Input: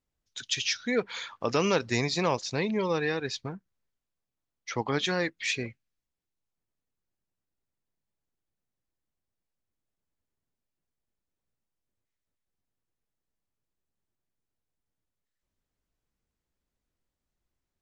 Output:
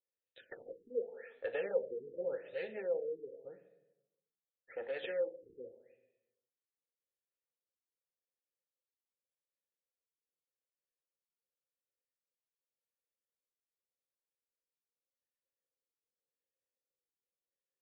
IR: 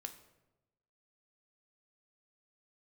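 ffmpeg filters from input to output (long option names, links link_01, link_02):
-filter_complex "[0:a]aeval=exprs='0.316*(cos(1*acos(clip(val(0)/0.316,-1,1)))-cos(1*PI/2))+0.158*(cos(4*acos(clip(val(0)/0.316,-1,1)))-cos(4*PI/2))':channel_layout=same,asplit=3[link_01][link_02][link_03];[link_01]bandpass=frequency=530:width_type=q:width=8,volume=0dB[link_04];[link_02]bandpass=frequency=1840:width_type=q:width=8,volume=-6dB[link_05];[link_03]bandpass=frequency=2480:width_type=q:width=8,volume=-9dB[link_06];[link_04][link_05][link_06]amix=inputs=3:normalize=0[link_07];[1:a]atrim=start_sample=2205[link_08];[link_07][link_08]afir=irnorm=-1:irlink=0,afftfilt=real='re*lt(b*sr/1024,460*pow(4600/460,0.5+0.5*sin(2*PI*0.86*pts/sr)))':imag='im*lt(b*sr/1024,460*pow(4600/460,0.5+0.5*sin(2*PI*0.86*pts/sr)))':win_size=1024:overlap=0.75,volume=2.5dB"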